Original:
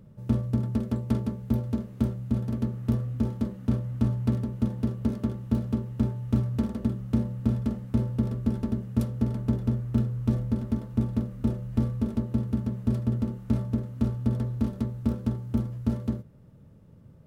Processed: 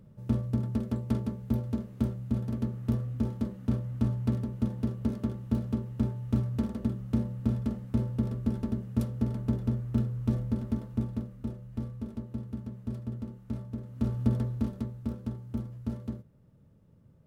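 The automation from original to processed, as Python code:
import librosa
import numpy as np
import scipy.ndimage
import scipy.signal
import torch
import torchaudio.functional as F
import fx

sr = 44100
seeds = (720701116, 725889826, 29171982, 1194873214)

y = fx.gain(x, sr, db=fx.line((10.82, -3.0), (11.52, -10.0), (13.75, -10.0), (14.21, 0.5), (15.06, -7.5)))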